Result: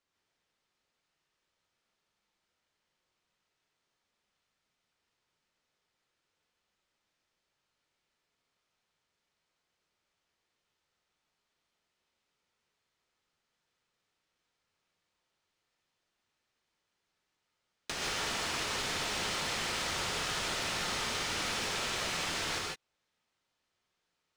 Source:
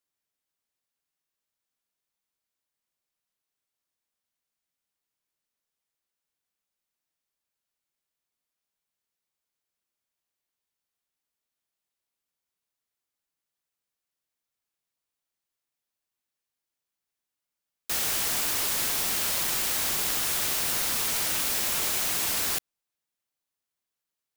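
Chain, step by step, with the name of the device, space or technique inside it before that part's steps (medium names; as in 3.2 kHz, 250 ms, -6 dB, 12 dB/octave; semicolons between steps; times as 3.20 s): distance through air 110 m; serial compression, peaks first (compression, threshold -37 dBFS, peak gain reduction 6 dB; compression 2:1, threshold -48 dBFS, peak gain reduction 7 dB); gated-style reverb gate 180 ms rising, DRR -2 dB; trim +7.5 dB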